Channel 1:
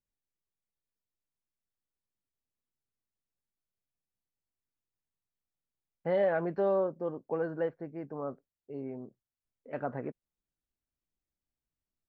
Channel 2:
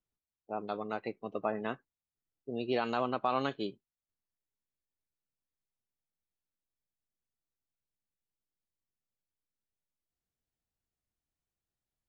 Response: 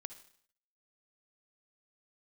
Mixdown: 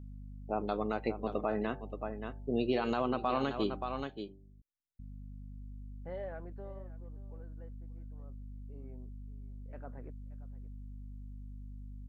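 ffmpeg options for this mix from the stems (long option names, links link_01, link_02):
-filter_complex "[0:a]volume=2dB,afade=type=out:start_time=6.12:duration=0.73:silence=0.251189,afade=type=in:start_time=8.25:duration=0.63:silence=0.281838,asplit=2[link_01][link_02];[link_02]volume=-22dB[link_03];[1:a]equalizer=frequency=230:width=0.49:gain=3.5,bandreject=frequency=97.22:width_type=h:width=4,bandreject=frequency=194.44:width_type=h:width=4,bandreject=frequency=291.66:width_type=h:width=4,bandreject=frequency=388.88:width_type=h:width=4,bandreject=frequency=486.1:width_type=h:width=4,bandreject=frequency=583.32:width_type=h:width=4,bandreject=frequency=680.54:width_type=h:width=4,bandreject=frequency=777.76:width_type=h:width=4,bandreject=frequency=874.98:width_type=h:width=4,aeval=exprs='val(0)+0.00398*(sin(2*PI*50*n/s)+sin(2*PI*2*50*n/s)/2+sin(2*PI*3*50*n/s)/3+sin(2*PI*4*50*n/s)/4+sin(2*PI*5*50*n/s)/5)':channel_layout=same,volume=3dB,asplit=3[link_04][link_05][link_06];[link_04]atrim=end=4.04,asetpts=PTS-STARTPTS,afade=type=out:start_time=4.036:duration=0.004:curve=hsin[link_07];[link_05]atrim=start=4.04:end=4.99,asetpts=PTS-STARTPTS,volume=0[link_08];[link_06]atrim=start=4.99,asetpts=PTS-STARTPTS,afade=type=in:duration=0.004:curve=hsin[link_09];[link_07][link_08][link_09]concat=n=3:v=0:a=1,asplit=3[link_10][link_11][link_12];[link_11]volume=-11dB[link_13];[link_12]apad=whole_len=533102[link_14];[link_01][link_14]sidechaincompress=threshold=-47dB:ratio=8:attack=16:release=763[link_15];[link_03][link_13]amix=inputs=2:normalize=0,aecho=0:1:577:1[link_16];[link_15][link_10][link_16]amix=inputs=3:normalize=0,alimiter=limit=-20.5dB:level=0:latency=1:release=144"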